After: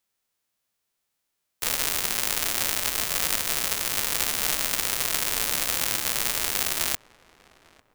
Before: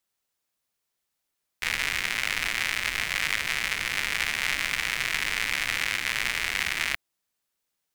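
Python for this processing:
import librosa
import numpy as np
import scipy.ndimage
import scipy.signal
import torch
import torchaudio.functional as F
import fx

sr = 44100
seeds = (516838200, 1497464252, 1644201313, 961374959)

y = fx.envelope_flatten(x, sr, power=0.1)
y = fx.echo_filtered(y, sr, ms=849, feedback_pct=43, hz=1600.0, wet_db=-22)
y = y * librosa.db_to_amplitude(2.0)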